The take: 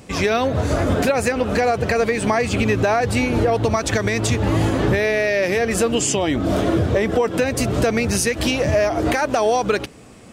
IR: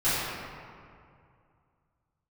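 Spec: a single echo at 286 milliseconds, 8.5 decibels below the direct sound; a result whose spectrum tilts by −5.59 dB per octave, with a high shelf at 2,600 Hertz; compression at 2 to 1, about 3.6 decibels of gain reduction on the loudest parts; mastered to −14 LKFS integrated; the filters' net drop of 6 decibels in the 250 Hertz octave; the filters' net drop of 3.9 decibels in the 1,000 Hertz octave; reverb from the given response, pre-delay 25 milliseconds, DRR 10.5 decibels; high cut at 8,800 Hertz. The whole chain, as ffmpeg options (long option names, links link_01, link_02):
-filter_complex "[0:a]lowpass=8800,equalizer=frequency=250:width_type=o:gain=-7.5,equalizer=frequency=1000:width_type=o:gain=-4,highshelf=frequency=2600:gain=-8,acompressor=threshold=-23dB:ratio=2,aecho=1:1:286:0.376,asplit=2[link_01][link_02];[1:a]atrim=start_sample=2205,adelay=25[link_03];[link_02][link_03]afir=irnorm=-1:irlink=0,volume=-25dB[link_04];[link_01][link_04]amix=inputs=2:normalize=0,volume=10.5dB"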